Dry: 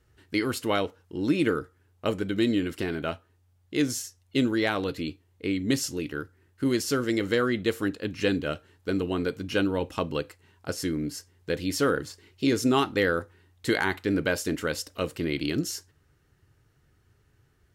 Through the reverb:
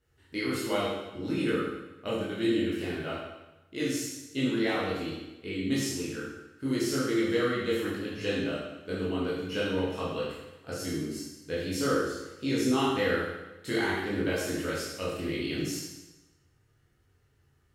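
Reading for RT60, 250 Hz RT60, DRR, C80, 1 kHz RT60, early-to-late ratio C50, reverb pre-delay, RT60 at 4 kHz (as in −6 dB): 1.0 s, 1.0 s, −8.0 dB, 3.0 dB, 1.0 s, 0.0 dB, 15 ms, 1.0 s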